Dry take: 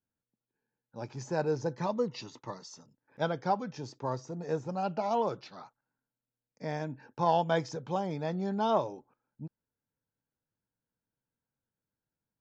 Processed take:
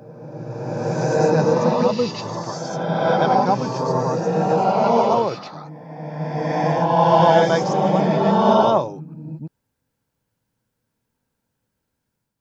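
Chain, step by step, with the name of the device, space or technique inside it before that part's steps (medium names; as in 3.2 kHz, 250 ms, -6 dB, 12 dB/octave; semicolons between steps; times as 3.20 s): reverse reverb (reverse; reverberation RT60 2.4 s, pre-delay 83 ms, DRR -4.5 dB; reverse); trim +9 dB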